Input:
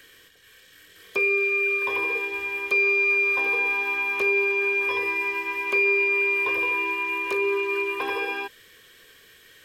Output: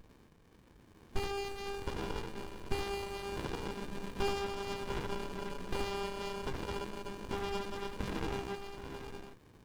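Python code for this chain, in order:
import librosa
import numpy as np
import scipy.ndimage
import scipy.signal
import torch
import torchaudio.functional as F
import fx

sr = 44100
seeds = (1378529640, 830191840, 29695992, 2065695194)

y = scipy.signal.sosfilt(scipy.signal.butter(2, 87.0, 'highpass', fs=sr, output='sos'), x)
y = fx.echo_multitap(y, sr, ms=(77, 82, 101, 779, 835, 862), db=(-3.0, -19.0, -17.0, -13.0, -11.5, -13.5))
y = fx.running_max(y, sr, window=65)
y = y * 10.0 ** (-4.0 / 20.0)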